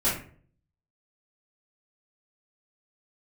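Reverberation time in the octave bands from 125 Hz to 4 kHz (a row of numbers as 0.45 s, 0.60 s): 0.75 s, 0.60 s, 0.55 s, 0.40 s, 0.40 s, 0.30 s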